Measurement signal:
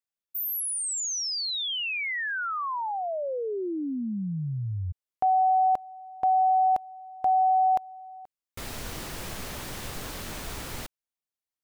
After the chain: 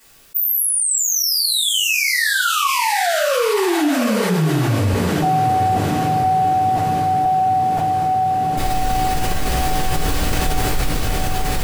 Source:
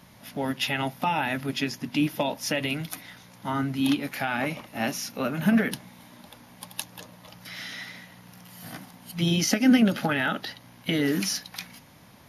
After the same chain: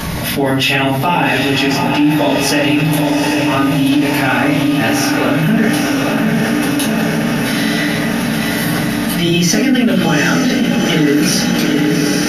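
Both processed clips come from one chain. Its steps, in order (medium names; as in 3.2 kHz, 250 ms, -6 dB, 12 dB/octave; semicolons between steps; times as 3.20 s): in parallel at -2.5 dB: gain riding 2 s; on the sum: echo that smears into a reverb 815 ms, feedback 70%, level -5.5 dB; simulated room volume 31 m³, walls mixed, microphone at 1.5 m; level flattener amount 70%; trim -11 dB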